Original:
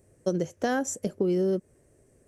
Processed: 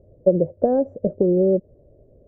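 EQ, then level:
low-pass with resonance 590 Hz, resonance Q 4.9
spectral tilt −3.5 dB per octave
−2.5 dB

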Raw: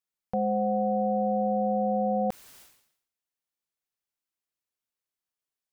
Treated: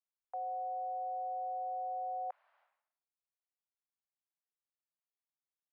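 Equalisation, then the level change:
Butterworth high-pass 610 Hz 48 dB per octave
low-pass filter 1,400 Hz 12 dB per octave
high-frequency loss of the air 260 metres
−6.5 dB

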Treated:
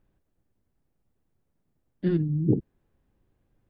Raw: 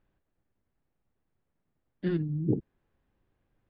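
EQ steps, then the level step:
tilt shelving filter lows +5.5 dB, about 890 Hz
high-shelf EQ 2,900 Hz +8.5 dB
0.0 dB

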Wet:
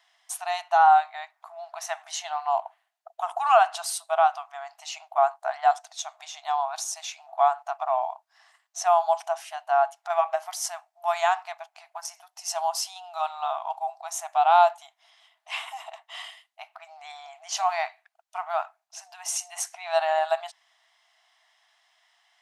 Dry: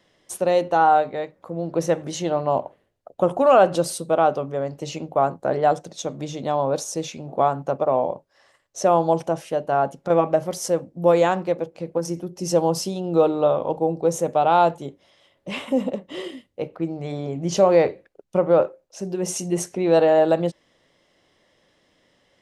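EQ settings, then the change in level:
linear-phase brick-wall high-pass 640 Hz
0.0 dB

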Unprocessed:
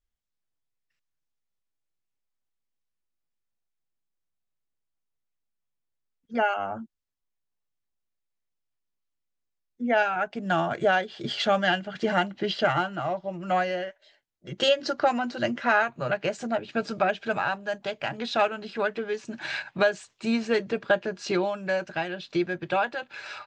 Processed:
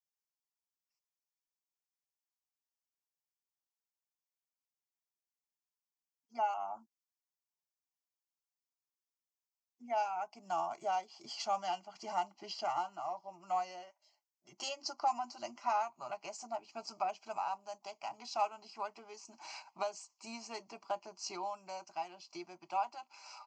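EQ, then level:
high-pass filter 730 Hz 12 dB per octave
flat-topped bell 2,100 Hz −14 dB
phaser with its sweep stopped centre 2,500 Hz, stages 8
−1.5 dB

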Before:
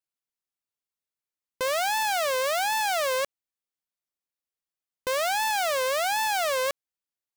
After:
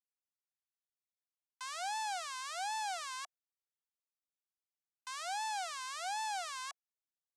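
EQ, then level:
Butterworth high-pass 720 Hz 96 dB per octave
low-pass filter 8,800 Hz 24 dB per octave
parametric band 2,100 Hz −7.5 dB 1.8 octaves
−8.5 dB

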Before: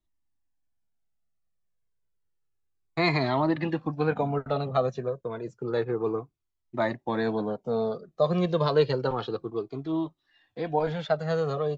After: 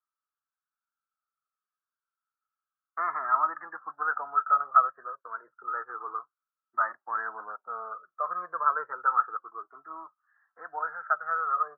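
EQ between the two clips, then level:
high-pass with resonance 1,300 Hz, resonance Q 12
Butterworth low-pass 1,700 Hz 72 dB per octave
−4.5 dB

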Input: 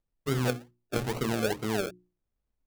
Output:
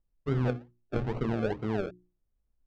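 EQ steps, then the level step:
head-to-tape spacing loss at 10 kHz 34 dB
low-shelf EQ 67 Hz +8.5 dB
0.0 dB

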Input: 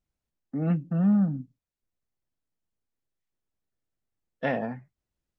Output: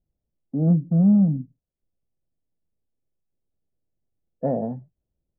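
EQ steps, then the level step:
transistor ladder low-pass 770 Hz, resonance 30%
parametric band 160 Hz +3 dB 0.26 octaves
low-shelf EQ 230 Hz +6.5 dB
+7.5 dB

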